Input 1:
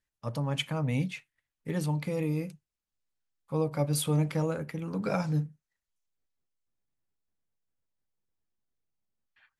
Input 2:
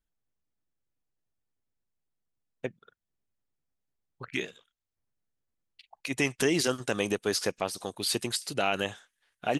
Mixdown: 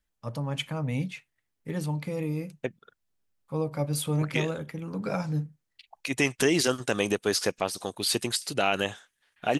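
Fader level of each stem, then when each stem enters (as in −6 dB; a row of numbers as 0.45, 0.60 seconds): −0.5, +2.5 decibels; 0.00, 0.00 seconds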